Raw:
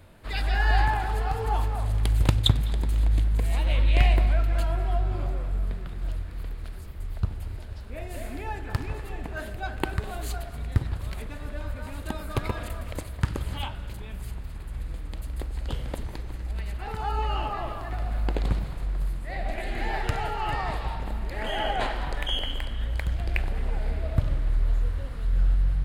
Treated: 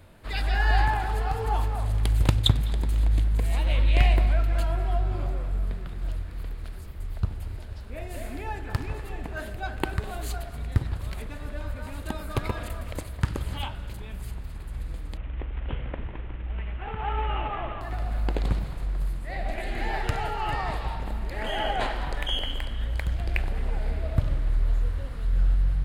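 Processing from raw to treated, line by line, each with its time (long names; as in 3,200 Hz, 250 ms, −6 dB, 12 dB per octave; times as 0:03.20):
0:15.17–0:17.81: variable-slope delta modulation 16 kbit/s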